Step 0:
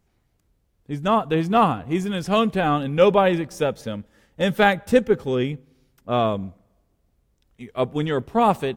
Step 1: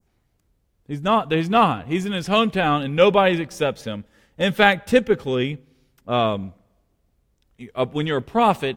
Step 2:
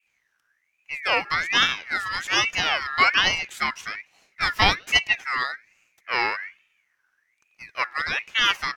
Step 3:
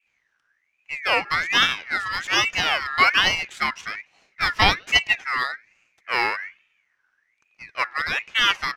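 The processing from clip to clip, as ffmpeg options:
ffmpeg -i in.wav -af "adynamicequalizer=threshold=0.0141:dfrequency=2800:dqfactor=0.76:tfrequency=2800:tqfactor=0.76:attack=5:release=100:ratio=0.375:range=3:mode=boostabove:tftype=bell" out.wav
ffmpeg -i in.wav -af "equalizer=frequency=4200:width=3.6:gain=12.5,aeval=exprs='val(0)*sin(2*PI*2000*n/s+2000*0.25/1.2*sin(2*PI*1.2*n/s))':channel_layout=same,volume=-1.5dB" out.wav
ffmpeg -i in.wav -af "adynamicsmooth=sensitivity=4.5:basefreq=6900,volume=1.5dB" out.wav

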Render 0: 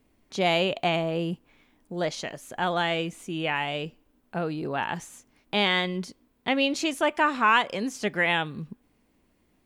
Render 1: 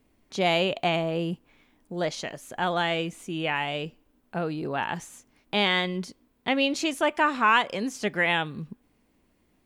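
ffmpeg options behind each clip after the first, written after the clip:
ffmpeg -i in.wav -af anull out.wav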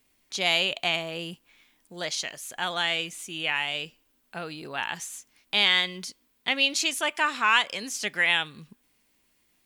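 ffmpeg -i in.wav -af "tiltshelf=frequency=1400:gain=-9.5,volume=-1dB" out.wav

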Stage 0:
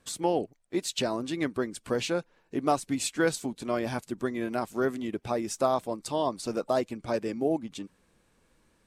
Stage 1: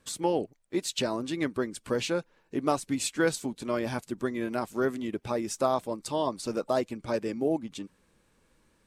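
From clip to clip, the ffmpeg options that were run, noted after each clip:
ffmpeg -i in.wav -af "bandreject=frequency=710:width=12" out.wav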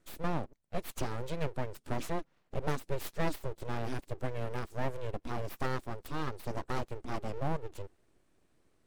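ffmpeg -i in.wav -af "equalizer=frequency=150:width_type=o:width=1.5:gain=14,aeval=exprs='abs(val(0))':channel_layout=same,volume=-8dB" out.wav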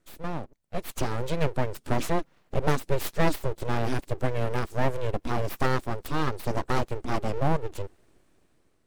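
ffmpeg -i in.wav -af "dynaudnorm=framelen=260:gausssize=7:maxgain=9dB" out.wav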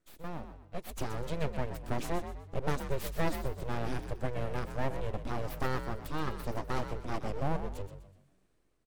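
ffmpeg -i in.wav -filter_complex "[0:a]asplit=5[link_01][link_02][link_03][link_04][link_05];[link_02]adelay=125,afreqshift=46,volume=-10dB[link_06];[link_03]adelay=250,afreqshift=92,volume=-19.1dB[link_07];[link_04]adelay=375,afreqshift=138,volume=-28.2dB[link_08];[link_05]adelay=500,afreqshift=184,volume=-37.4dB[link_09];[link_01][link_06][link_07][link_08][link_09]amix=inputs=5:normalize=0,volume=-8dB" out.wav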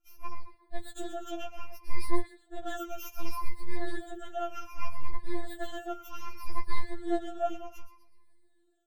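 ffmpeg -i in.wav -af "afftfilt=real='re*pow(10,22/40*sin(2*PI*(0.89*log(max(b,1)*sr/1024/100)/log(2)-(-0.65)*(pts-256)/sr)))':imag='im*pow(10,22/40*sin(2*PI*(0.89*log(max(b,1)*sr/1024/100)/log(2)-(-0.65)*(pts-256)/sr)))':win_size=1024:overlap=0.75,afftfilt=real='re*4*eq(mod(b,16),0)':imag='im*4*eq(mod(b,16),0)':win_size=2048:overlap=0.75,volume=-3dB" out.wav

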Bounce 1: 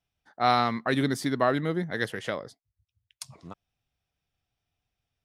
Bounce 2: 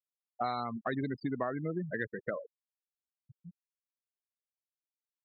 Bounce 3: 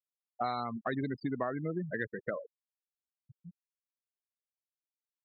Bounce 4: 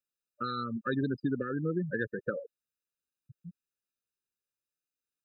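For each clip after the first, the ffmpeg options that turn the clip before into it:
ffmpeg -i in.wav -af "afftfilt=real='re*gte(hypot(re,im),0.0708)':imag='im*gte(hypot(re,im),0.0708)':win_size=1024:overlap=0.75,acompressor=threshold=-31dB:ratio=6" out.wav
ffmpeg -i in.wav -af anull out.wav
ffmpeg -i in.wav -af "afftfilt=real='re*eq(mod(floor(b*sr/1024/590),2),0)':imag='im*eq(mod(floor(b*sr/1024/590),2),0)':win_size=1024:overlap=0.75,volume=4dB" out.wav

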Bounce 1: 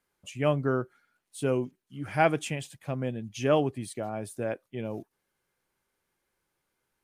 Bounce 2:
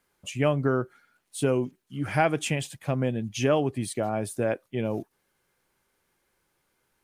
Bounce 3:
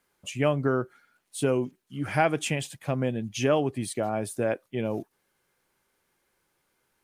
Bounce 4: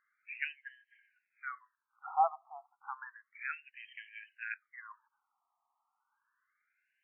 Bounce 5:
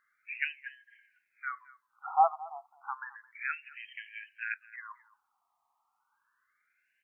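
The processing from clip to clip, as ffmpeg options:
ffmpeg -i in.wav -af "acompressor=threshold=-27dB:ratio=3,volume=6.5dB" out.wav
ffmpeg -i in.wav -af "lowshelf=frequency=110:gain=-4.5" out.wav
ffmpeg -i in.wav -af "afftfilt=real='re*between(b*sr/1024,930*pow(2300/930,0.5+0.5*sin(2*PI*0.31*pts/sr))/1.41,930*pow(2300/930,0.5+0.5*sin(2*PI*0.31*pts/sr))*1.41)':imag='im*between(b*sr/1024,930*pow(2300/930,0.5+0.5*sin(2*PI*0.31*pts/sr))/1.41,930*pow(2300/930,0.5+0.5*sin(2*PI*0.31*pts/sr))*1.41)':win_size=1024:overlap=0.75,volume=-1dB" out.wav
ffmpeg -i in.wav -af "aecho=1:1:218:0.1,volume=4.5dB" out.wav

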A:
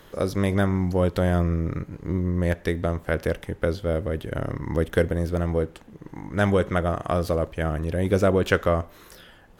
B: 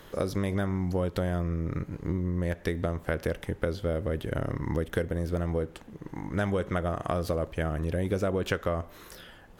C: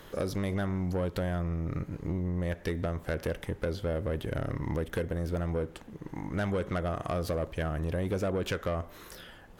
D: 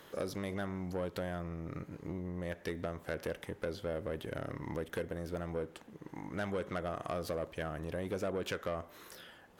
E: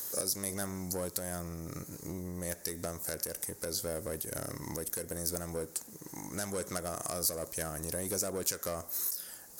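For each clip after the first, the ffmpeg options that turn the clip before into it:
ffmpeg -i in.wav -af "acompressor=threshold=-25dB:ratio=5" out.wav
ffmpeg -i in.wav -af "asoftclip=type=tanh:threshold=-23.5dB" out.wav
ffmpeg -i in.wav -af "highpass=frequency=220:poles=1,volume=-4dB" out.wav
ffmpeg -i in.wav -af "aexciter=amount=8.9:drive=9.4:freq=4900,alimiter=limit=-17.5dB:level=0:latency=1:release=173" out.wav

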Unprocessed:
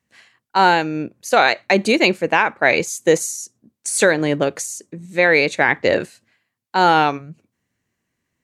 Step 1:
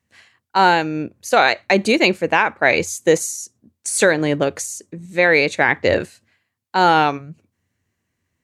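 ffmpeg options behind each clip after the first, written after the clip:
ffmpeg -i in.wav -af "equalizer=frequency=88:width_type=o:width=0.35:gain=12" out.wav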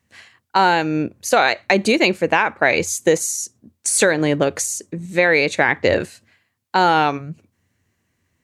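ffmpeg -i in.wav -af "acompressor=threshold=-21dB:ratio=2,volume=5dB" out.wav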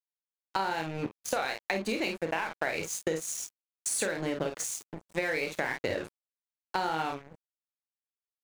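ffmpeg -i in.wav -af "aecho=1:1:31|50:0.473|0.473,aeval=exprs='sgn(val(0))*max(abs(val(0))-0.0473,0)':channel_layout=same,acompressor=threshold=-21dB:ratio=6,volume=-6.5dB" out.wav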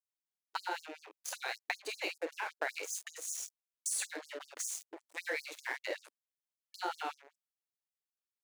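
ffmpeg -i in.wav -af "afftfilt=real='re*gte(b*sr/1024,260*pow(5000/260,0.5+0.5*sin(2*PI*5.2*pts/sr)))':imag='im*gte(b*sr/1024,260*pow(5000/260,0.5+0.5*sin(2*PI*5.2*pts/sr)))':win_size=1024:overlap=0.75,volume=-4dB" out.wav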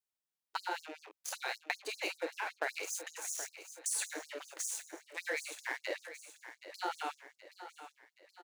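ffmpeg -i in.wav -af "aecho=1:1:774|1548|2322|3096|3870:0.237|0.116|0.0569|0.0279|0.0137" out.wav

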